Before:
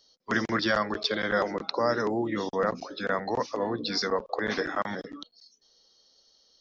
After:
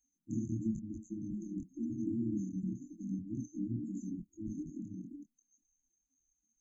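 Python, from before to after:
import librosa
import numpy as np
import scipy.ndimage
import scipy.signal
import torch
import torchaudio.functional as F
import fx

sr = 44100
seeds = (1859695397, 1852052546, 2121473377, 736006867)

y = fx.spec_quant(x, sr, step_db=30)
y = fx.chorus_voices(y, sr, voices=2, hz=0.96, base_ms=24, depth_ms=3.0, mix_pct=40)
y = fx.brickwall_bandstop(y, sr, low_hz=340.0, high_hz=6100.0)
y = y * 10.0 ** (1.0 / 20.0)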